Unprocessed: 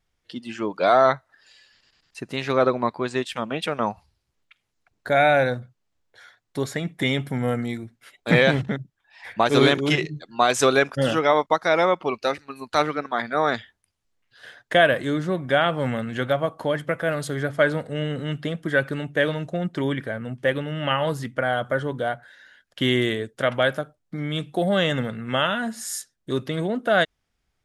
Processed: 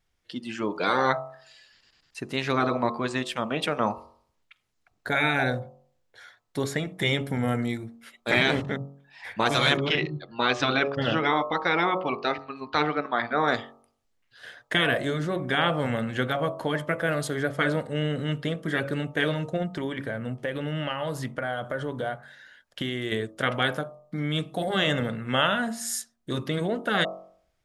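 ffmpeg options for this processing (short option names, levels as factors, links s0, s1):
-filter_complex "[0:a]asettb=1/sr,asplit=3[s0][s1][s2];[s0]atrim=end=9.774[s3];[s1]atrim=start=9.77:end=13.48,asetpts=PTS-STARTPTS,afade=t=in:d=0.004:c=qsin,afade=t=out:st=3.706:d=0.004:c=qsin,lowpass=f=4300:w=0.5412,lowpass=f=4300:w=1.3066[s4];[s2]atrim=start=13.476[s5];[s3][s4]acrossfade=d=0.004:c1=hsin:c2=qsin[s6];[s6][s5]acrossfade=d=0.004:c1=qsin:c2=hsin,asettb=1/sr,asplit=3[s7][s8][s9];[s7]atrim=end=19.624[s10];[s8]atrim=start=19.62:end=23.12,asetpts=PTS-STARTPTS,afade=t=in:d=0.004:c=qsin,afade=t=out:st=3.496:d=0.004:c=qsin,acompressor=threshold=0.0562:ratio=6:attack=3.2:release=140:knee=1:detection=peak[s11];[s9]atrim=start=23.116[s12];[s10][s11]acrossfade=d=0.004:c1=hsin:c2=qsin[s13];[s13][s12]acrossfade=d=0.004:c1=qsin:c2=hsin,bandreject=f=46.39:t=h:w=4,bandreject=f=92.78:t=h:w=4,bandreject=f=139.17:t=h:w=4,bandreject=f=185.56:t=h:w=4,bandreject=f=231.95:t=h:w=4,bandreject=f=278.34:t=h:w=4,bandreject=f=324.73:t=h:w=4,bandreject=f=371.12:t=h:w=4,bandreject=f=417.51:t=h:w=4,bandreject=f=463.9:t=h:w=4,bandreject=f=510.29:t=h:w=4,bandreject=f=556.68:t=h:w=4,bandreject=f=603.07:t=h:w=4,bandreject=f=649.46:t=h:w=4,bandreject=f=695.85:t=h:w=4,bandreject=f=742.24:t=h:w=4,bandreject=f=788.63:t=h:w=4,bandreject=f=835.02:t=h:w=4,bandreject=f=881.41:t=h:w=4,bandreject=f=927.8:t=h:w=4,bandreject=f=974.19:t=h:w=4,bandreject=f=1020.58:t=h:w=4,bandreject=f=1066.97:t=h:w=4,bandreject=f=1113.36:t=h:w=4,bandreject=f=1159.75:t=h:w=4,bandreject=f=1206.14:t=h:w=4,bandreject=f=1252.53:t=h:w=4,bandreject=f=1298.92:t=h:w=4,afftfilt=real='re*lt(hypot(re,im),0.562)':imag='im*lt(hypot(re,im),0.562)':win_size=1024:overlap=0.75"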